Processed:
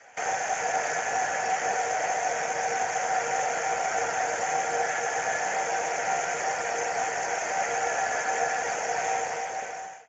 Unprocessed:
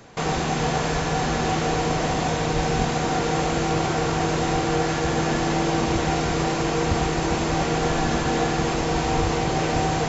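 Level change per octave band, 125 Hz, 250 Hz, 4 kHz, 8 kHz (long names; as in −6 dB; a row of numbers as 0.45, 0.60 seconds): −27.5 dB, −24.0 dB, −10.5 dB, can't be measured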